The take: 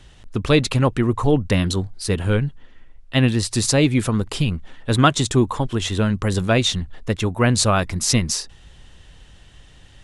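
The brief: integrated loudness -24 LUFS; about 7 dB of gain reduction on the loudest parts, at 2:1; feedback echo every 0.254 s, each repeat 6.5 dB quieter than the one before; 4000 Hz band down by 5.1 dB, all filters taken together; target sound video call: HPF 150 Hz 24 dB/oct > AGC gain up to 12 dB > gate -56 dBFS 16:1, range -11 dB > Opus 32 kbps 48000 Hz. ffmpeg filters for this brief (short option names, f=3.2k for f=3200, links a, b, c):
-af "equalizer=f=4k:t=o:g=-6.5,acompressor=threshold=-24dB:ratio=2,highpass=f=150:w=0.5412,highpass=f=150:w=1.3066,aecho=1:1:254|508|762|1016|1270|1524:0.473|0.222|0.105|0.0491|0.0231|0.0109,dynaudnorm=m=12dB,agate=range=-11dB:threshold=-56dB:ratio=16,volume=3dB" -ar 48000 -c:a libopus -b:a 32k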